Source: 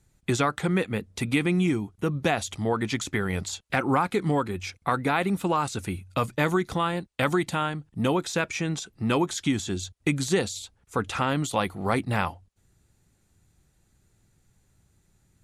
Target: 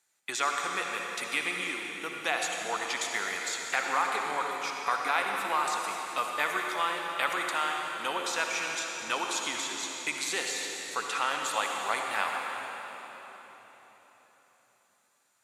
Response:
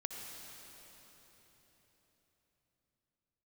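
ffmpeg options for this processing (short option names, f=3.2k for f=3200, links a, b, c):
-filter_complex "[0:a]highpass=910[a];[1:a]atrim=start_sample=2205[b];[a][b]afir=irnorm=-1:irlink=0,volume=2dB"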